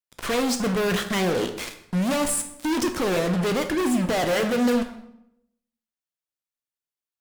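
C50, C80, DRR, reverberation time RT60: 10.0 dB, 13.0 dB, 6.0 dB, 0.80 s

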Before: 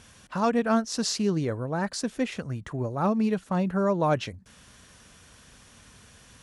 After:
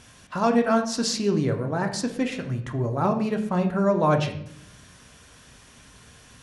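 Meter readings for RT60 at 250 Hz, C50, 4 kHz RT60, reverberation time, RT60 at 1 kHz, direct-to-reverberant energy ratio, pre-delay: 1.1 s, 9.5 dB, 0.55 s, 0.70 s, 0.60 s, 4.0 dB, 3 ms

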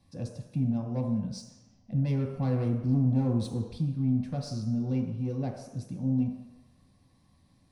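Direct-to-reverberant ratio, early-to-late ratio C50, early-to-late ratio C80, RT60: 0.0 dB, 5.0 dB, 7.0 dB, 1.0 s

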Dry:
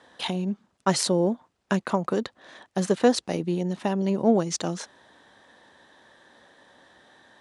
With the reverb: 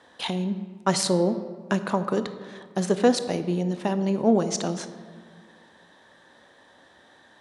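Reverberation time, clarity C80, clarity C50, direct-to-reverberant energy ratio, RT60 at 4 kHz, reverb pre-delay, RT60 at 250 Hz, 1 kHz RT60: 1.8 s, 13.0 dB, 11.5 dB, 10.5 dB, 0.90 s, 20 ms, 2.2 s, 1.6 s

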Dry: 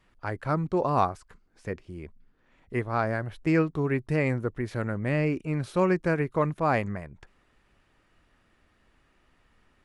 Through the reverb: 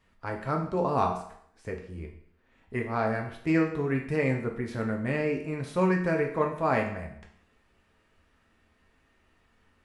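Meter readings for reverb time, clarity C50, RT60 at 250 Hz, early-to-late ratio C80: 0.65 s, 7.5 dB, 0.65 s, 11.0 dB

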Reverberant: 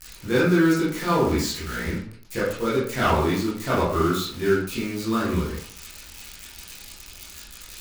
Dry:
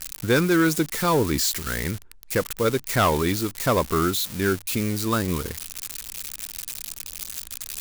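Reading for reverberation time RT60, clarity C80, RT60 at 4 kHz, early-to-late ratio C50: 0.60 s, 7.0 dB, 0.35 s, 2.0 dB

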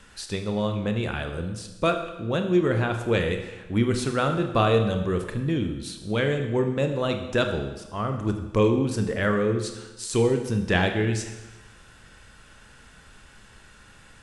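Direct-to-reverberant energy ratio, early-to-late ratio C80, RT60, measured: 5.0 dB, 9.5 dB, 1.1 s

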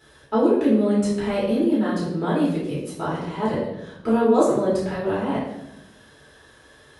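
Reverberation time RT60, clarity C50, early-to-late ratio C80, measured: 0.85 s, 1.5 dB, 5.5 dB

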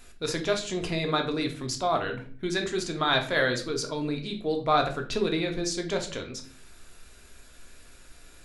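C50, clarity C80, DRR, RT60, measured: 10.5 dB, 15.5 dB, 3.0 dB, 0.45 s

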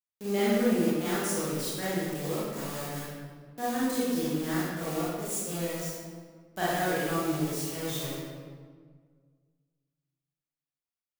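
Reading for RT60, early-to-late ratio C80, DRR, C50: 1.7 s, -0.5 dB, -10.0 dB, -4.5 dB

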